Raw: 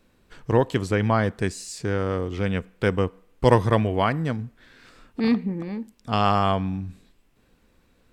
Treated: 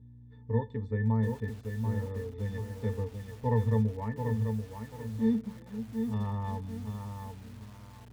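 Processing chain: hum 60 Hz, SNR 14 dB; pitch-class resonator A, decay 0.13 s; bit-crushed delay 736 ms, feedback 35%, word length 8-bit, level -5.5 dB; trim -2.5 dB

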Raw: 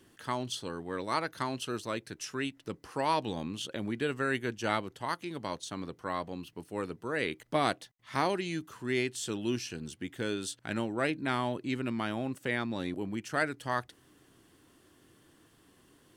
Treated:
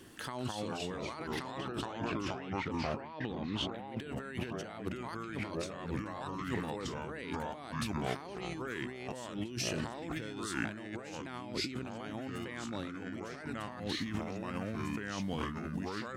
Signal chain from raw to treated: 1.51–3.71 s: low-pass 3.1 kHz 12 dB/octave; ever faster or slower copies 159 ms, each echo -3 st, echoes 3; compressor with a negative ratio -40 dBFS, ratio -1

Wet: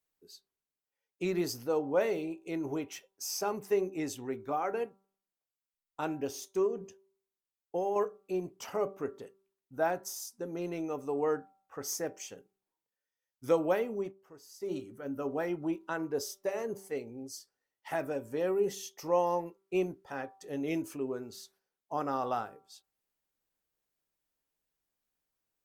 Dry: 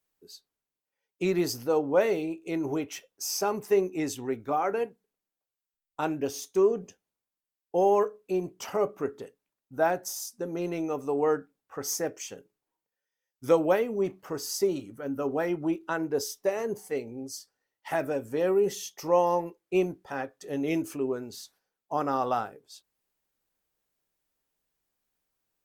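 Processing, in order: de-hum 194 Hz, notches 7; 6.66–7.96 s: compression 5:1, threshold -24 dBFS, peak gain reduction 6 dB; 14.00–14.73 s: dip -15 dB, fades 0.13 s; trim -5 dB

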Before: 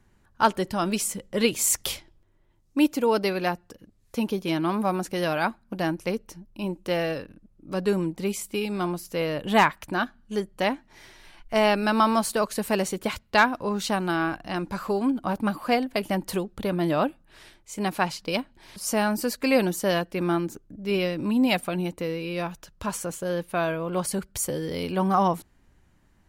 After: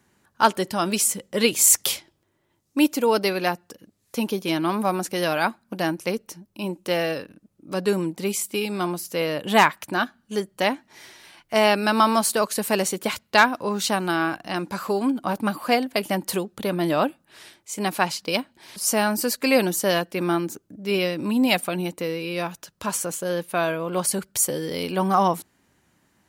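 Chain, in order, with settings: Bessel high-pass 170 Hz, order 2; treble shelf 4.2 kHz +6 dB; trim +2.5 dB

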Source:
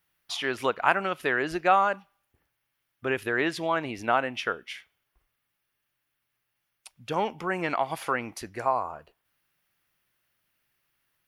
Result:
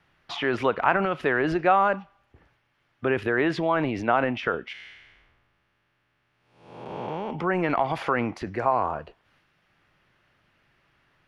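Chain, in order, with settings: 4.73–7.31 s: spectral blur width 469 ms; transient shaper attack 0 dB, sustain +7 dB; tape spacing loss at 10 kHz 26 dB; three bands compressed up and down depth 40%; trim +5 dB

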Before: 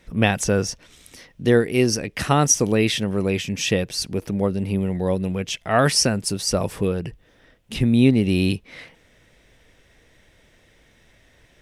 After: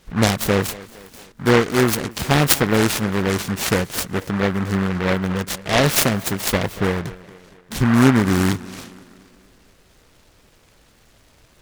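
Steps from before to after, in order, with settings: dynamic bell 1.5 kHz, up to -4 dB, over -37 dBFS, Q 1.3; tape echo 233 ms, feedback 56%, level -17.5 dB, low-pass 3.2 kHz; delay time shaken by noise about 1.2 kHz, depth 0.2 ms; trim +2 dB

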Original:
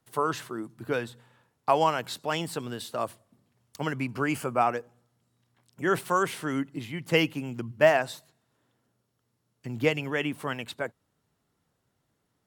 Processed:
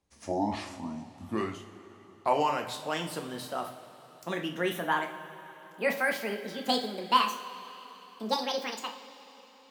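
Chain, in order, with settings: gliding tape speed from 58% -> 199%; two-slope reverb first 0.43 s, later 4.1 s, from -17 dB, DRR 2.5 dB; trim -4.5 dB

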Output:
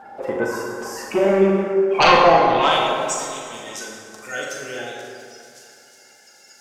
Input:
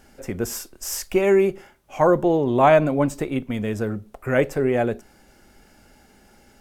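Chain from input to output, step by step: coarse spectral quantiser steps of 30 dB; 1.25–1.99 s: high-order bell 850 Hz -13.5 dB 1 oct; in parallel at -0.5 dB: compression, threshold -34 dBFS, peak gain reduction 20.5 dB; on the sum: band-pass sweep 930 Hz -> 5.9 kHz, 2.26–2.85 s; sine folder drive 13 dB, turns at -8 dBFS; on a send: flutter echo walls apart 7.1 m, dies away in 0.32 s; on the sum: plate-style reverb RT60 2.3 s, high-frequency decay 0.5×, DRR -1.5 dB; modulated delay 119 ms, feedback 72%, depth 106 cents, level -16.5 dB; trim -3.5 dB

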